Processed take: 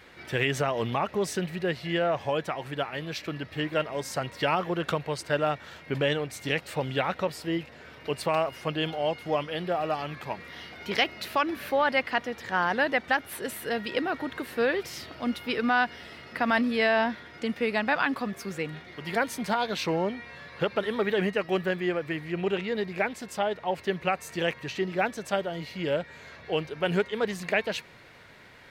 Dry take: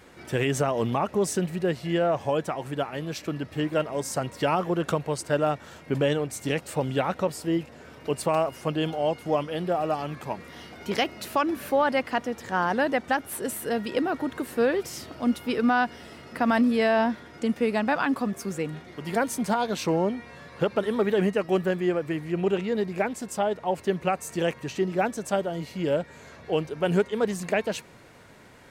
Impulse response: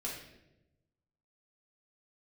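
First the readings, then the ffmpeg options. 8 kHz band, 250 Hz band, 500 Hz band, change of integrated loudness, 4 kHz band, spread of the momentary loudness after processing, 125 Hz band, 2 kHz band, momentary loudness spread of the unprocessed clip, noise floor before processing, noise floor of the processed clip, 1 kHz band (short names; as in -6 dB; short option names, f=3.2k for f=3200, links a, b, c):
-5.5 dB, -4.5 dB, -3.0 dB, -2.0 dB, +3.0 dB, 9 LU, -3.5 dB, +3.0 dB, 8 LU, -49 dBFS, -49 dBFS, -1.5 dB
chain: -af "equalizer=f=250:t=o:w=1:g=-3,equalizer=f=2k:t=o:w=1:g=6,equalizer=f=4k:t=o:w=1:g=6,equalizer=f=8k:t=o:w=1:g=-6,volume=-2.5dB"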